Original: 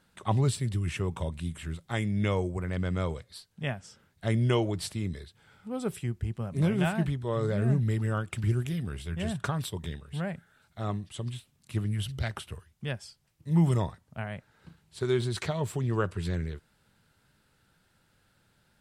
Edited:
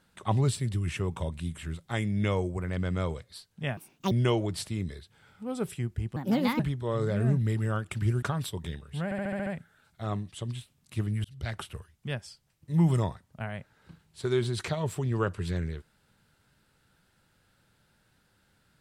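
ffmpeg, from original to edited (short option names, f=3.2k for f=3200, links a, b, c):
-filter_complex "[0:a]asplit=13[a][b][c][d][e][f][g][h][i][j][k][l][m];[a]atrim=end=3.774[n];[b]atrim=start=3.77:end=4.36,asetpts=PTS-STARTPTS,asetrate=75852,aresample=44100,atrim=end_sample=15127,asetpts=PTS-STARTPTS[o];[c]atrim=start=4.356:end=6.414[p];[d]atrim=start=6.41:end=7.01,asetpts=PTS-STARTPTS,asetrate=61299,aresample=44100[q];[e]atrim=start=7.006:end=8.642[r];[f]atrim=start=9.418:end=10.312[s];[g]atrim=start=10.238:end=10.312[t];[h]atrim=start=10.238:end=10.312[u];[i]atrim=start=10.238:end=10.312[v];[j]atrim=start=10.238:end=10.312[w];[k]atrim=start=10.238:end=10.312[x];[l]atrim=start=10.238:end=12.02,asetpts=PTS-STARTPTS,afade=t=out:st=1.778:d=0.004:c=hsin[y];[m]atrim=start=12.02,asetpts=PTS-STARTPTS,afade=t=in:d=0.3[z];[n][o]acrossfade=d=0.004:c1=hsin:c2=hsin[aa];[aa][p]acrossfade=d=0.004:c1=hsin:c2=hsin[ab];[ab][q]acrossfade=d=0.004:c1=hsin:c2=hsin[ac];[ac][r]acrossfade=d=0.004:c1=hsin:c2=hsin[ad];[ad][s]acrossfade=d=0.004:c1=hsin:c2=hsin[ae];[ae][t]acrossfade=d=0.004:c1=hsin:c2=hsin[af];[af][u]acrossfade=d=0.004:c1=hsin:c2=hsin[ag];[ag][v]acrossfade=d=0.004:c1=hsin:c2=hsin[ah];[ah][w]acrossfade=d=0.004:c1=hsin:c2=hsin[ai];[ai][x]acrossfade=d=0.004:c1=hsin:c2=hsin[aj];[y][z]concat=n=2:v=0:a=1[ak];[aj][ak]acrossfade=d=0.004:c1=hsin:c2=hsin"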